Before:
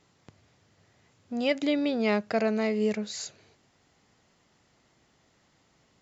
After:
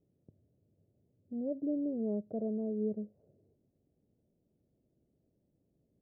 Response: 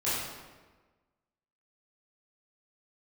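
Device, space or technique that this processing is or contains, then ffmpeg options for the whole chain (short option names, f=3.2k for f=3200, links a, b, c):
under water: -af "lowpass=f=430:w=0.5412,lowpass=f=430:w=1.3066,equalizer=f=610:t=o:w=0.42:g=7.5,volume=-6.5dB"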